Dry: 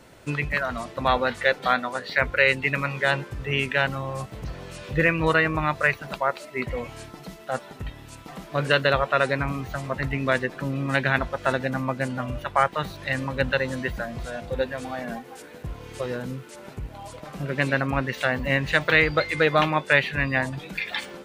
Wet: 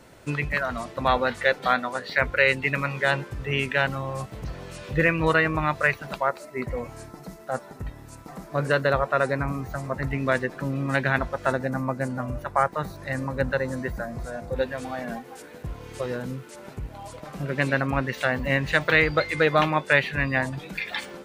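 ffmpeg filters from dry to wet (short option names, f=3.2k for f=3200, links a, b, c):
-af "asetnsamples=n=441:p=0,asendcmd='6.29 equalizer g -12.5;10.07 equalizer g -6;11.51 equalizer g -14.5;14.56 equalizer g -2.5',equalizer=f=3.1k:t=o:w=0.94:g=-2"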